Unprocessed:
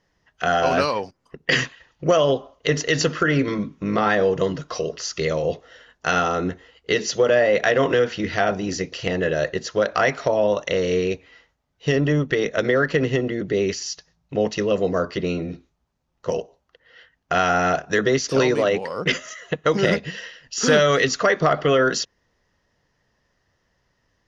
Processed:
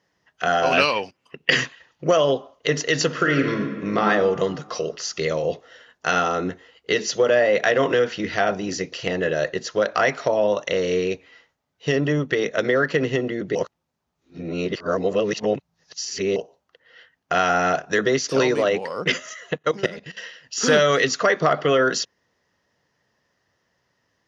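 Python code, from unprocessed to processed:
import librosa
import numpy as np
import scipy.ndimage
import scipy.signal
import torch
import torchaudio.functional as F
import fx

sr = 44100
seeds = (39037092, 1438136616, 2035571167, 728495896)

y = fx.peak_eq(x, sr, hz=2700.0, db=14.5, octaves=0.61, at=(0.72, 1.5))
y = fx.reverb_throw(y, sr, start_s=3.06, length_s=1.0, rt60_s=1.6, drr_db=4.5)
y = fx.level_steps(y, sr, step_db=17, at=(19.57, 20.17))
y = fx.edit(y, sr, fx.reverse_span(start_s=13.55, length_s=2.81), tone=tone)
y = scipy.signal.sosfilt(scipy.signal.butter(2, 91.0, 'highpass', fs=sr, output='sos'), y)
y = fx.low_shelf(y, sr, hz=180.0, db=-4.5)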